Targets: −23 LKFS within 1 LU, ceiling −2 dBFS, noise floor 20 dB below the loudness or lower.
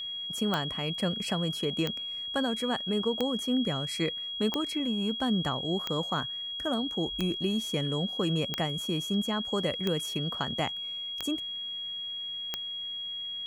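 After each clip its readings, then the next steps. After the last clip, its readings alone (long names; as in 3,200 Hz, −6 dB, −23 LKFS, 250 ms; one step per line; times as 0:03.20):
number of clicks 10; interfering tone 3,300 Hz; level of the tone −34 dBFS; integrated loudness −30.5 LKFS; sample peak −11.5 dBFS; target loudness −23.0 LKFS
→ click removal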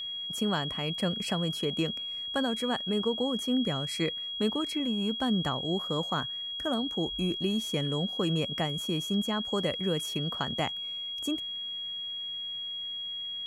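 number of clicks 0; interfering tone 3,300 Hz; level of the tone −34 dBFS
→ notch filter 3,300 Hz, Q 30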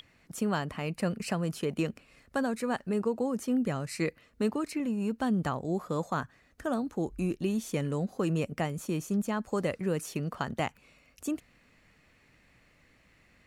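interfering tone none found; integrated loudness −32.5 LKFS; sample peak −15.5 dBFS; target loudness −23.0 LKFS
→ level +9.5 dB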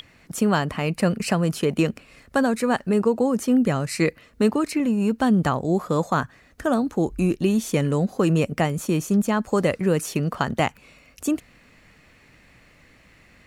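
integrated loudness −23.0 LKFS; sample peak −6.0 dBFS; background noise floor −55 dBFS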